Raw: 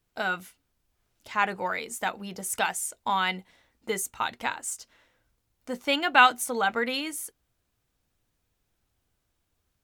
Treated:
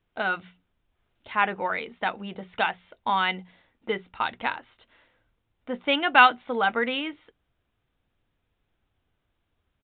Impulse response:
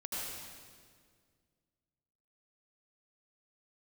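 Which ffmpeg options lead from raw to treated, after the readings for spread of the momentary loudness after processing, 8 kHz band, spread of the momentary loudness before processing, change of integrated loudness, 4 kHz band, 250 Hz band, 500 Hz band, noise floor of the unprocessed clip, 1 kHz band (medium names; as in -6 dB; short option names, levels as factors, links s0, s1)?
18 LU, under -40 dB, 15 LU, +2.0 dB, +1.0 dB, +2.0 dB, +2.0 dB, -77 dBFS, +2.0 dB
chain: -af "bandreject=f=60:t=h:w=6,bandreject=f=120:t=h:w=6,bandreject=f=180:t=h:w=6,aresample=8000,aresample=44100,volume=1.26"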